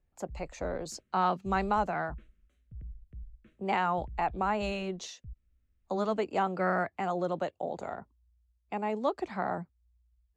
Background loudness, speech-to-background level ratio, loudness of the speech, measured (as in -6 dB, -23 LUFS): -50.0 LUFS, 17.5 dB, -32.5 LUFS